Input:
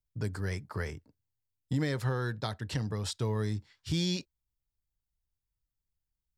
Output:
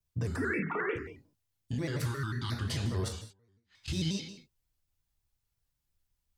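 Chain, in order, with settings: 0.36–0.96 s: formants replaced by sine waves; 1.99–2.52 s: Chebyshev band-stop 370–1000 Hz, order 3; peak limiter -31.5 dBFS, peak gain reduction 11.5 dB; 3.08–3.88 s: inverted gate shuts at -39 dBFS, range -38 dB; gated-style reverb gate 260 ms falling, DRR 0.5 dB; vibrato with a chosen wave square 5.6 Hz, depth 160 cents; trim +4 dB

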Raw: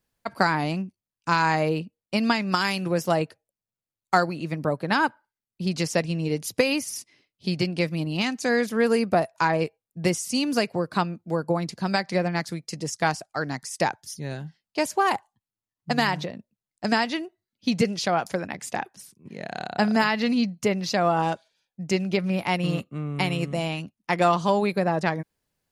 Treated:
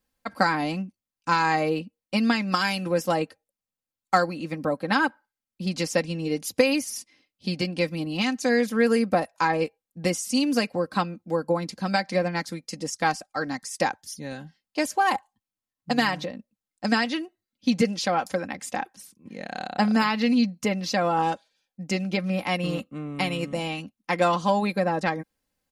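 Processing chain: comb 3.8 ms, depth 58%; trim -1.5 dB

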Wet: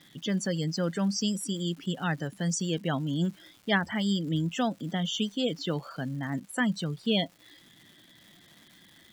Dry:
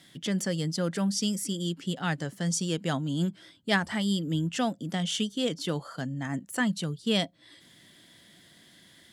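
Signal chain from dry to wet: loudest bins only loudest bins 64; crackle 400 per s -45 dBFS

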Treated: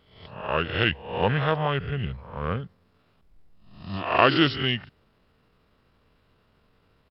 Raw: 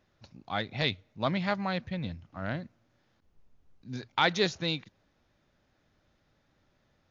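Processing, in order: reverse spectral sustain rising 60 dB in 0.60 s; pitch shift -4.5 st; trim +5 dB

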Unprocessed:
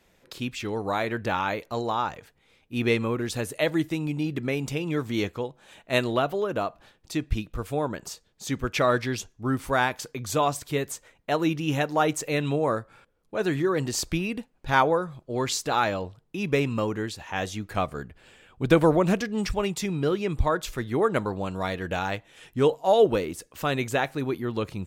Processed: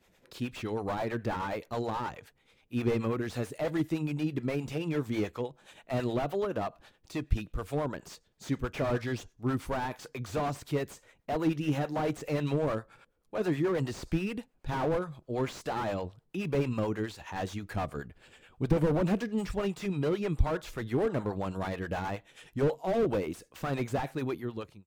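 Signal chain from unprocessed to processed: fade out at the end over 0.61 s; harmonic tremolo 9.4 Hz, depth 70%, crossover 460 Hz; slew-rate limiter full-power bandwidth 28 Hz

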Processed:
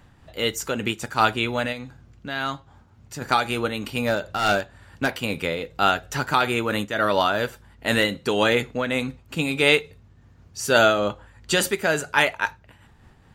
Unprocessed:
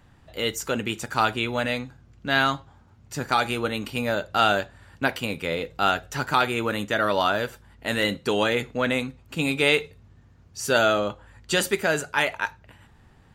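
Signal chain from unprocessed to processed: 1.72–3.22 s: compression 2:1, threshold -32 dBFS, peak gain reduction 9 dB; 4.04–5.12 s: hard clipper -18.5 dBFS, distortion -19 dB; random flutter of the level, depth 65%; trim +5.5 dB

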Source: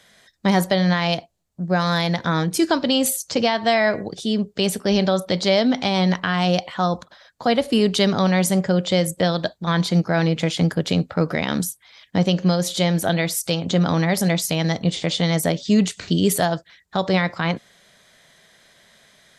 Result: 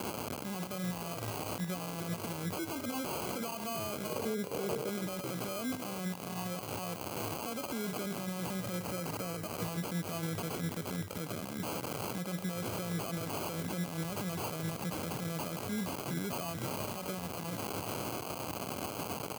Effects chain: zero-crossing glitches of -20.5 dBFS; sample-and-hold 24×; 4.10–4.89 s: peaking EQ 470 Hz +14 dB 0.43 oct; 8.78–9.55 s: band-stop 3.5 kHz, Q 5.7; frequency-shifting echo 381 ms, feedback 34%, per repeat -70 Hz, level -13.5 dB; compression 3:1, threshold -26 dBFS, peak gain reduction 11 dB; high-pass 88 Hz 24 dB/octave; treble shelf 8.1 kHz +10.5 dB; peak limiter -18 dBFS, peak gain reduction 14 dB; trim -5 dB

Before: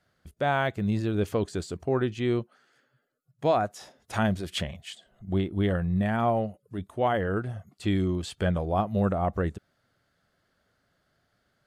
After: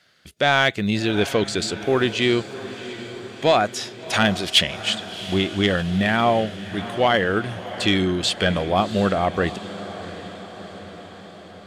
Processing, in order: frequency weighting D; saturation -13 dBFS, distortion -20 dB; echo that smears into a reverb 706 ms, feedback 63%, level -14 dB; trim +7.5 dB

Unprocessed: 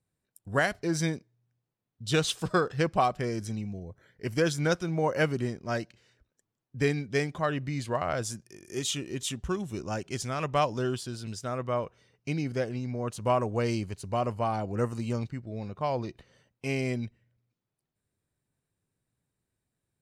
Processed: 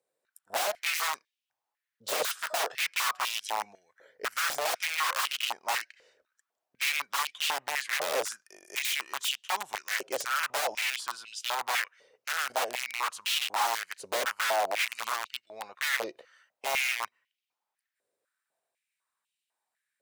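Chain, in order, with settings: integer overflow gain 26.5 dB; step-sequenced high-pass 4 Hz 520–2900 Hz

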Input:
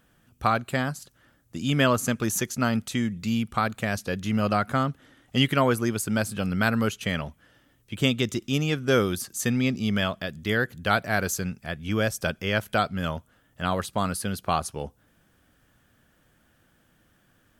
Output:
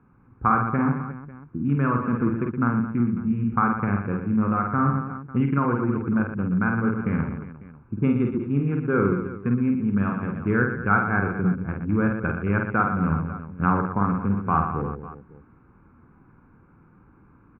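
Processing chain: local Wiener filter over 41 samples; tilt EQ -2.5 dB/octave; added noise brown -54 dBFS; in parallel at +1 dB: peak limiter -14.5 dBFS, peak gain reduction 8 dB; on the sum: steep low-pass 1.9 kHz 36 dB/octave; comb 0.8 ms, depth 79%; on a send: reverse bouncing-ball echo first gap 50 ms, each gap 1.4×, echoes 5; on the sum: gain riding 0.5 s; high-pass 410 Hz 6 dB/octave; trim -4.5 dB

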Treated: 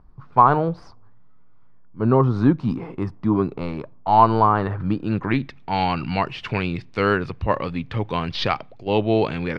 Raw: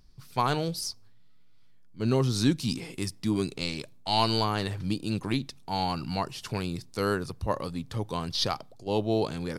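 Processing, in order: median filter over 3 samples; low-pass sweep 1.1 kHz -> 2.4 kHz, 4.47–5.82 s; trim +7 dB

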